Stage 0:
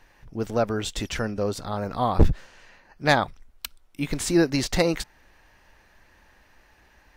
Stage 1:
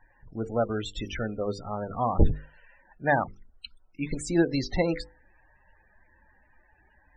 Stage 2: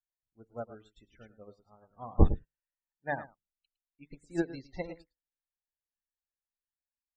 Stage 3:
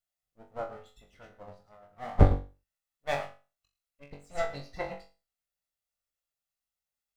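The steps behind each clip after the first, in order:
spectral peaks only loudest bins 32; mains-hum notches 50/100/150/200/250/300/350/400/450/500 Hz; level −2.5 dB
single-tap delay 109 ms −7.5 dB; expander for the loud parts 2.5 to 1, over −45 dBFS
lower of the sound and its delayed copy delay 1.5 ms; on a send: flutter between parallel walls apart 3.6 metres, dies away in 0.31 s; on the sum: level +3 dB

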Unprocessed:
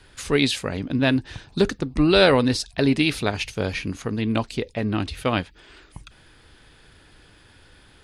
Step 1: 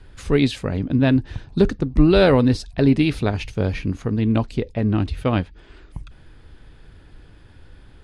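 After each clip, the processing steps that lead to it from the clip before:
spectral tilt −2.5 dB per octave
level −1 dB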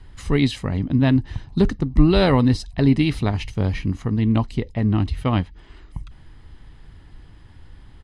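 comb filter 1 ms, depth 41%
level −1 dB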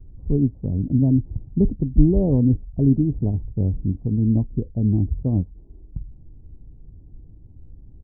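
Gaussian smoothing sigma 18 samples
level +1 dB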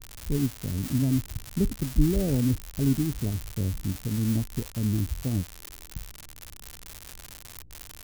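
spike at every zero crossing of −13 dBFS
level −7 dB

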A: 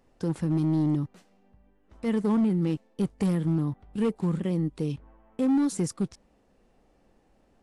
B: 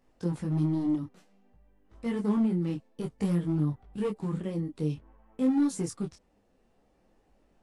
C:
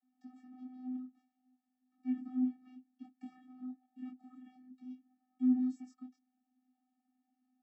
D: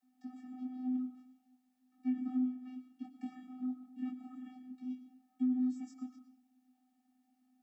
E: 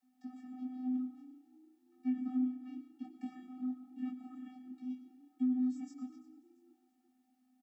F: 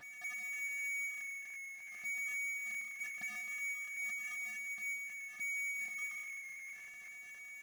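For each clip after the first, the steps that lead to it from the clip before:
micro pitch shift up and down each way 19 cents
channel vocoder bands 32, square 254 Hz; level −9 dB
downward compressor 6 to 1, threshold −36 dBFS, peak gain reduction 11.5 dB; on a send at −9 dB: convolution reverb RT60 0.65 s, pre-delay 70 ms; on the sum: level +6 dB
echo with shifted repeats 340 ms, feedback 43%, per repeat +30 Hz, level −21 dB
voice inversion scrambler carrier 2,500 Hz; brickwall limiter −35 dBFS, peak gain reduction 9.5 dB; power curve on the samples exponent 0.35; level −2 dB

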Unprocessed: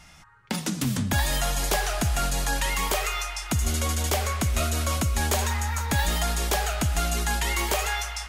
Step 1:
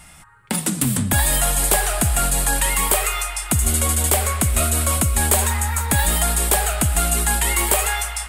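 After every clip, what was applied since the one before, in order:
high shelf with overshoot 7,200 Hz +6 dB, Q 3
level +5 dB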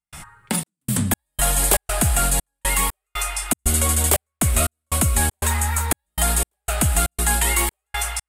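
reversed playback
upward compression, threshold −24 dBFS
reversed playback
gate pattern ".xxxx..xx..xxx" 119 BPM −60 dB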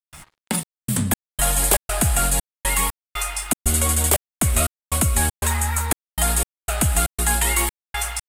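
dead-zone distortion −43 dBFS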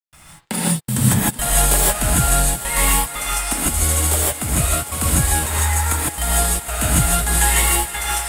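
automatic gain control
feedback echo with a high-pass in the loop 376 ms, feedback 85%, high-pass 180 Hz, level −15 dB
reverb whose tail is shaped and stops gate 180 ms rising, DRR −6 dB
level −6.5 dB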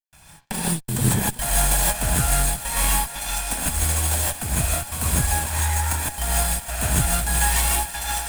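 lower of the sound and its delayed copy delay 1.2 ms
level −3 dB

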